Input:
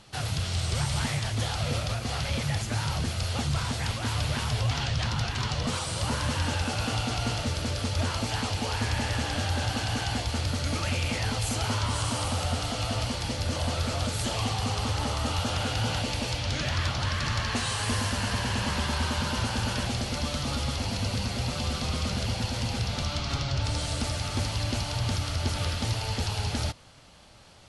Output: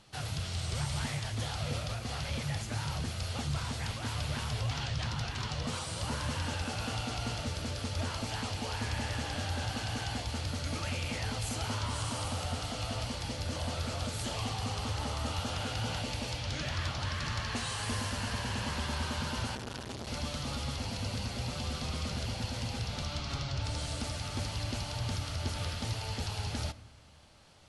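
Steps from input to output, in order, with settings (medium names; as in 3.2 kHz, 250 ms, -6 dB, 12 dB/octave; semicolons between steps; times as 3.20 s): reverberation RT60 1.3 s, pre-delay 6 ms, DRR 15 dB; 19.55–20.07 s: transformer saturation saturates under 750 Hz; trim -6.5 dB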